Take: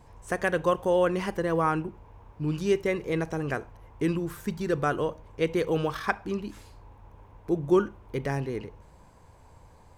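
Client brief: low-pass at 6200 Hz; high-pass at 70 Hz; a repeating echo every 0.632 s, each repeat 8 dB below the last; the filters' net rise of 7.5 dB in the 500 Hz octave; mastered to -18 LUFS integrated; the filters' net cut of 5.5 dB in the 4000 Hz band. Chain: HPF 70 Hz; LPF 6200 Hz; bell 500 Hz +9 dB; bell 4000 Hz -8 dB; feedback echo 0.632 s, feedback 40%, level -8 dB; gain +5 dB

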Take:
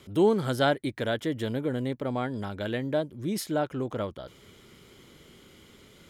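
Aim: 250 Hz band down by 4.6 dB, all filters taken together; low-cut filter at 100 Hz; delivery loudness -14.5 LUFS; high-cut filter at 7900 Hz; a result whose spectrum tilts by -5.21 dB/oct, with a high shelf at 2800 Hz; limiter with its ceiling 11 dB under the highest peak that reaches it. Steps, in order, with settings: HPF 100 Hz; LPF 7900 Hz; bell 250 Hz -6 dB; high shelf 2800 Hz +3.5 dB; gain +19.5 dB; limiter -2 dBFS

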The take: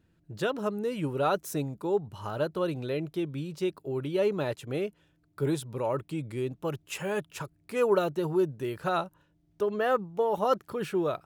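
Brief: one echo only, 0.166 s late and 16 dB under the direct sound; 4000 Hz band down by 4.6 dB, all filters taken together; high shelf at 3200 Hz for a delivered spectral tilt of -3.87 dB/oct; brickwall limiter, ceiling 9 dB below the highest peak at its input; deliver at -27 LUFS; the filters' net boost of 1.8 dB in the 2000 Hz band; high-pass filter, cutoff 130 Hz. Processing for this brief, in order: HPF 130 Hz; bell 2000 Hz +5.5 dB; high shelf 3200 Hz -5.5 dB; bell 4000 Hz -5 dB; limiter -21 dBFS; echo 0.166 s -16 dB; gain +5.5 dB

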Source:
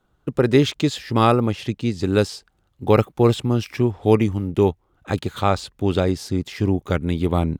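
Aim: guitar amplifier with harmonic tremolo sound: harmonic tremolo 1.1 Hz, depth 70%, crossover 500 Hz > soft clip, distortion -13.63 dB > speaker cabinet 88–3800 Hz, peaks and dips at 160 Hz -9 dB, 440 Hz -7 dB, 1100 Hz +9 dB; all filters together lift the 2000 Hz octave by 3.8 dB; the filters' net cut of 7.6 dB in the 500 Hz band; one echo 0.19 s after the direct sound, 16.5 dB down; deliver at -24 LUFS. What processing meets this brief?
bell 500 Hz -5.5 dB; bell 2000 Hz +4.5 dB; echo 0.19 s -16.5 dB; harmonic tremolo 1.1 Hz, depth 70%, crossover 500 Hz; soft clip -16 dBFS; speaker cabinet 88–3800 Hz, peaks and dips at 160 Hz -9 dB, 440 Hz -7 dB, 1100 Hz +9 dB; gain +4.5 dB

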